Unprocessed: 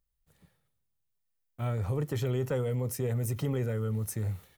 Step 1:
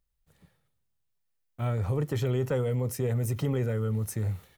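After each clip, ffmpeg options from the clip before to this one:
ffmpeg -i in.wav -af "highshelf=frequency=7200:gain=-4,volume=2.5dB" out.wav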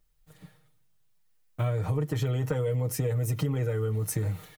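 ffmpeg -i in.wav -af "aecho=1:1:6.5:0.81,acompressor=threshold=-32dB:ratio=6,volume=6.5dB" out.wav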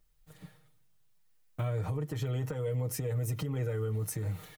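ffmpeg -i in.wav -af "alimiter=level_in=1.5dB:limit=-24dB:level=0:latency=1:release=338,volume=-1.5dB" out.wav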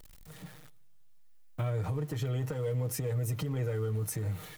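ffmpeg -i in.wav -af "aeval=exprs='val(0)+0.5*0.00398*sgn(val(0))':channel_layout=same" out.wav

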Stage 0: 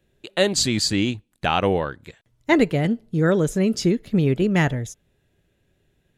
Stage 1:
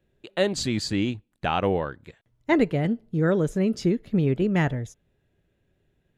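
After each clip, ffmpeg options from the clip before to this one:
ffmpeg -i in.wav -af "highshelf=frequency=3600:gain=-9.5,volume=-3dB" out.wav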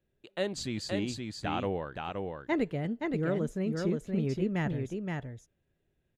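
ffmpeg -i in.wav -af "aecho=1:1:522:0.631,volume=-9dB" out.wav

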